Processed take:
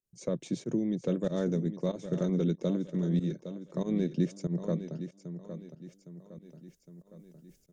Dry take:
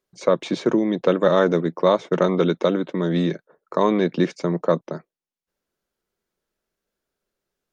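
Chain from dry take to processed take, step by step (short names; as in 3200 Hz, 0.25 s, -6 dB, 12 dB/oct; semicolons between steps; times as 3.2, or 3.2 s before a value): bell 1100 Hz -13.5 dB 1.5 oct; feedback echo 0.811 s, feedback 33%, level -11 dB; pump 94 bpm, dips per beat 1, -18 dB, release 0.107 s; EQ curve 120 Hz 0 dB, 340 Hz -10 dB, 4100 Hz -15 dB, 6700 Hz -4 dB; reverse; upward compressor, threshold -41 dBFS; reverse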